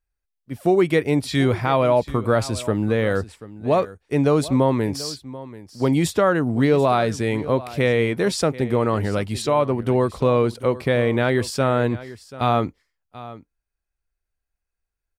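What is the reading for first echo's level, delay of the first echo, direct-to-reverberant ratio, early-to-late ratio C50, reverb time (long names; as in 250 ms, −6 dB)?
−17.0 dB, 736 ms, no reverb audible, no reverb audible, no reverb audible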